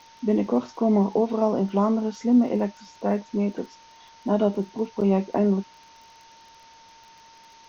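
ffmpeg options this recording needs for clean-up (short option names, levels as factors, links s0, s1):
-af "adeclick=t=4,bandreject=f=910:w=30,afwtdn=0.0032"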